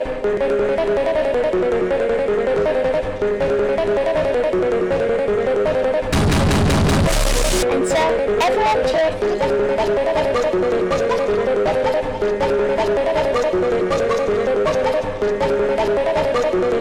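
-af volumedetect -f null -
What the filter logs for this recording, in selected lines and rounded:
mean_volume: -17.5 dB
max_volume: -13.5 dB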